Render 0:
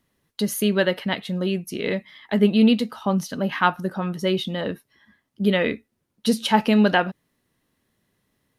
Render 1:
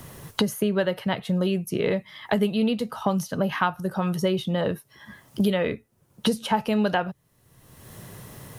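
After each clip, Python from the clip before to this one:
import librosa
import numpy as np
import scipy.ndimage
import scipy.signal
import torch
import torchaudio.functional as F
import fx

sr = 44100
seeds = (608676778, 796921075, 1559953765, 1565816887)

y = fx.graphic_eq_10(x, sr, hz=(125, 250, 2000, 4000), db=(7, -9, -6, -6))
y = fx.band_squash(y, sr, depth_pct=100)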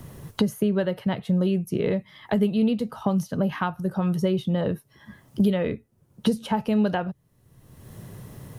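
y = fx.low_shelf(x, sr, hz=490.0, db=9.5)
y = F.gain(torch.from_numpy(y), -6.0).numpy()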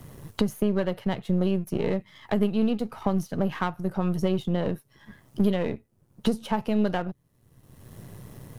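y = np.where(x < 0.0, 10.0 ** (-7.0 / 20.0) * x, x)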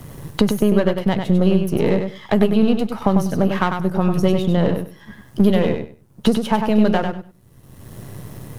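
y = fx.echo_feedback(x, sr, ms=98, feedback_pct=19, wet_db=-6.0)
y = F.gain(torch.from_numpy(y), 8.0).numpy()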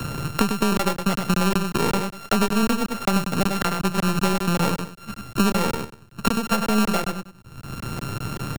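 y = np.r_[np.sort(x[:len(x) // 32 * 32].reshape(-1, 32), axis=1).ravel(), x[len(x) // 32 * 32:]]
y = fx.buffer_crackle(y, sr, first_s=0.77, period_s=0.19, block=1024, kind='zero')
y = fx.band_squash(y, sr, depth_pct=70)
y = F.gain(torch.from_numpy(y), -4.5).numpy()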